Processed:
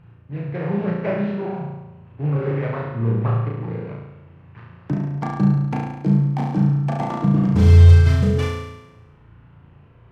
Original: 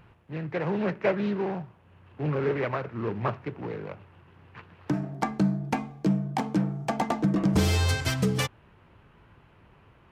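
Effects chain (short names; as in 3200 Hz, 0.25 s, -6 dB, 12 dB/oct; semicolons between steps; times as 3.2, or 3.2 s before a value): LPF 2800 Hz 6 dB/oct; bell 120 Hz +10.5 dB 1.5 oct; flutter echo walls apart 6 m, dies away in 0.98 s; on a send at -13.5 dB: reverb RT60 0.60 s, pre-delay 58 ms; on the sum: gain -2.5 dB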